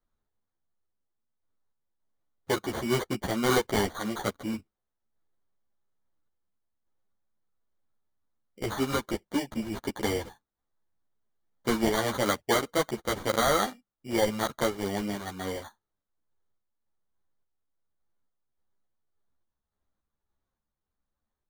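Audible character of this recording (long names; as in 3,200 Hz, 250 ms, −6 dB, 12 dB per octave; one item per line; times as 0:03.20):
sample-and-hold tremolo
aliases and images of a low sample rate 2,600 Hz, jitter 0%
a shimmering, thickened sound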